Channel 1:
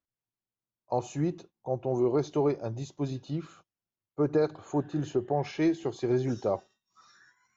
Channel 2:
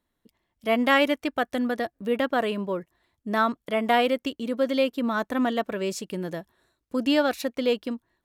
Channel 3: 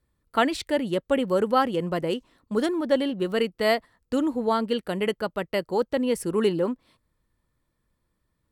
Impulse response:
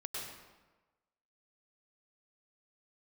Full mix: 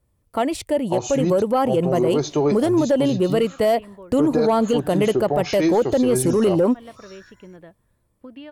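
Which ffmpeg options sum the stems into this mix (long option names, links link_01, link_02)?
-filter_complex "[0:a]adynamicequalizer=threshold=0.00282:dfrequency=2900:dqfactor=0.7:tfrequency=2900:tqfactor=0.7:attack=5:release=100:ratio=0.375:range=4:mode=boostabove:tftype=highshelf,volume=1.5dB,asplit=2[link_01][link_02];[1:a]lowpass=frequency=3300:width=0.5412,lowpass=frequency=3300:width=1.3066,acompressor=threshold=-26dB:ratio=6,adelay=1300,volume=-17.5dB[link_03];[2:a]equalizer=frequency=100:width_type=o:width=0.67:gain=8,equalizer=frequency=630:width_type=o:width=0.67:gain=5,equalizer=frequency=1600:width_type=o:width=0.67:gain=-8,equalizer=frequency=4000:width_type=o:width=0.67:gain=-7,equalizer=frequency=10000:width_type=o:width=0.67:gain=4,dynaudnorm=framelen=280:gausssize=11:maxgain=11.5dB,volume=-3.5dB[link_04];[link_02]apad=whole_len=420920[link_05];[link_03][link_05]sidechaincompress=threshold=-48dB:ratio=8:attack=16:release=145[link_06];[link_01][link_06][link_04]amix=inputs=3:normalize=0,acontrast=82,alimiter=limit=-11dB:level=0:latency=1:release=87"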